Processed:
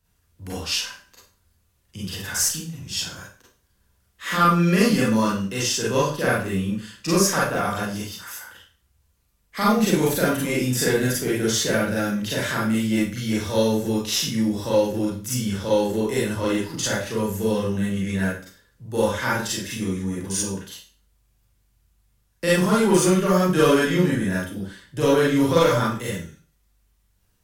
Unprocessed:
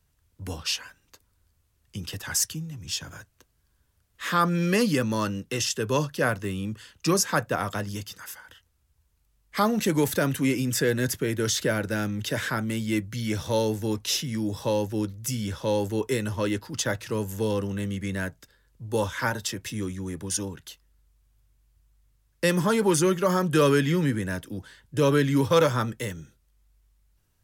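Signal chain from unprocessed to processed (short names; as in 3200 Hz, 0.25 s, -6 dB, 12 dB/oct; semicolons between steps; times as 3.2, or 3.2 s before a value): one diode to ground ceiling -13 dBFS; Schroeder reverb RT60 0.4 s, combs from 32 ms, DRR -6.5 dB; gain -2.5 dB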